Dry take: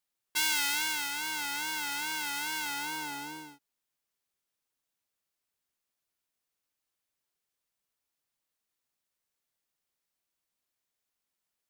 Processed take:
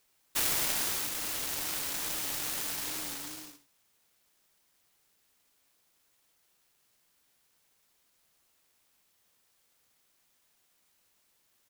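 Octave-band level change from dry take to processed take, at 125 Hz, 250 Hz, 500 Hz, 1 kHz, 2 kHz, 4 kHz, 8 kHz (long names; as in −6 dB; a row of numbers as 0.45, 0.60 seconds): +6.5, −1.0, +8.5, −7.0, −8.0, −3.0, +2.0 decibels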